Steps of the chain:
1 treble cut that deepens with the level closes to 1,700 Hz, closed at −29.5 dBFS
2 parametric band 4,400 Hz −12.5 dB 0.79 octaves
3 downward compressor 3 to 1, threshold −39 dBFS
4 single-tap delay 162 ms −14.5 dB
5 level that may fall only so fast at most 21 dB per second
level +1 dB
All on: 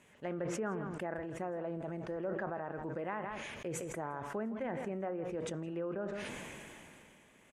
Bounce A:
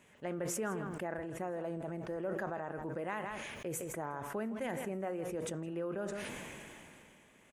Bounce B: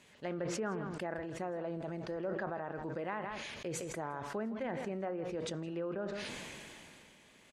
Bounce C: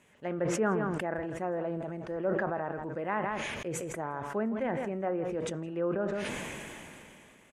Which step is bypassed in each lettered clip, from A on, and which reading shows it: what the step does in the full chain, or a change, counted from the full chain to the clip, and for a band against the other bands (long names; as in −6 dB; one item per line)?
1, 8 kHz band +5.0 dB
2, 4 kHz band +5.0 dB
3, change in integrated loudness +6.5 LU